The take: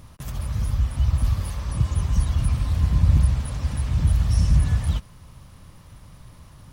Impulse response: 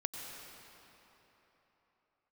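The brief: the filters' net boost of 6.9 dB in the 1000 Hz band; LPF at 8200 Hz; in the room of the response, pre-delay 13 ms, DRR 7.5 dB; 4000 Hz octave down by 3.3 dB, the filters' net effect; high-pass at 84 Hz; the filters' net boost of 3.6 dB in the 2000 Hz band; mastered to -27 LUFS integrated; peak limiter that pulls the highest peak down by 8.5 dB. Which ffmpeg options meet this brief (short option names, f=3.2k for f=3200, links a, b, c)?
-filter_complex "[0:a]highpass=84,lowpass=8.2k,equalizer=f=1k:t=o:g=7.5,equalizer=f=2k:t=o:g=3.5,equalizer=f=4k:t=o:g=-6,alimiter=limit=-18.5dB:level=0:latency=1,asplit=2[a][b];[1:a]atrim=start_sample=2205,adelay=13[c];[b][c]afir=irnorm=-1:irlink=0,volume=-8.5dB[d];[a][d]amix=inputs=2:normalize=0,volume=1dB"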